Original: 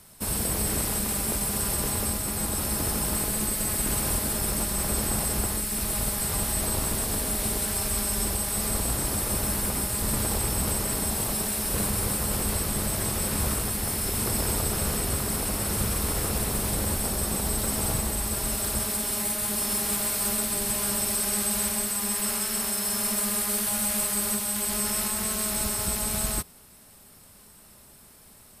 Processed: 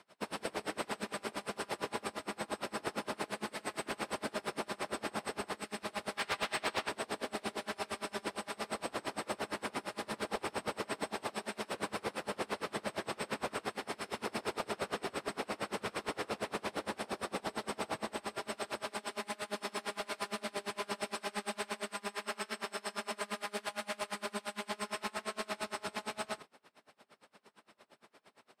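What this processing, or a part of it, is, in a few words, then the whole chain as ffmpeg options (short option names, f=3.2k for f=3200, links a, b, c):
helicopter radio: -filter_complex "[0:a]asettb=1/sr,asplit=3[a][b][c];[a]atrim=end=6.174[d];[b]atrim=start=6.17:end=6.89,asetpts=PTS-STARTPTS,afade=t=in:d=0.004:c=qsin,afade=t=out:st=0.716:d=0.004:c=qsin,equalizer=f=2.6k:w=0.49:g=9[e];[c]atrim=start=6.886[f];[d][e]acrossfade=d=0.004:c1=hsin:c2=qsin[g];[g][f]acrossfade=d=0.004:c1=qsin:c2=hsin,highpass=360,lowpass=3k,aeval=exprs='val(0)*pow(10,-29*(0.5-0.5*cos(2*PI*8.7*n/s))/20)':c=same,asoftclip=type=hard:threshold=-30.5dB,volume=3dB"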